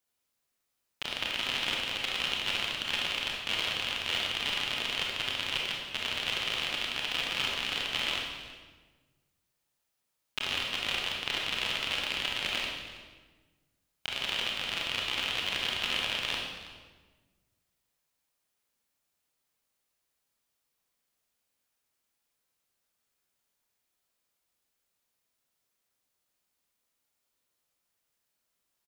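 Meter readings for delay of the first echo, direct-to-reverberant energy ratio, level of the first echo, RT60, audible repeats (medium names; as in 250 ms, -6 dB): 324 ms, -2.0 dB, -17.5 dB, 1.4 s, 1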